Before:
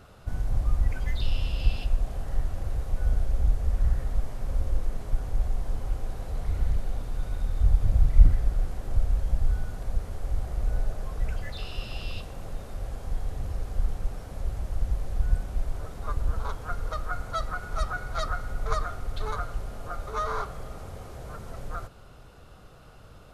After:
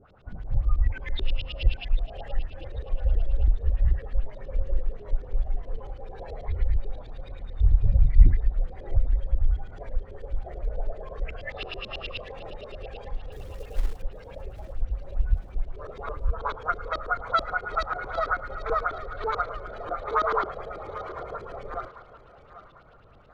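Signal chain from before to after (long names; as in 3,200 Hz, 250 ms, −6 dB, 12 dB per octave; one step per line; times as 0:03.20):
in parallel at −1 dB: downward compressor, threshold −30 dBFS, peak gain reduction 20.5 dB
on the sum: noise reduction from a noise print of the clip's start 12 dB
auto-filter low-pass saw up 9.2 Hz 310–4,200 Hz
0:13.32–0:14.02: log-companded quantiser 6 bits
on a send: feedback echo with a high-pass in the loop 794 ms, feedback 45%, high-pass 400 Hz, level −14 dB
on the sum: tape wow and flutter 23 cents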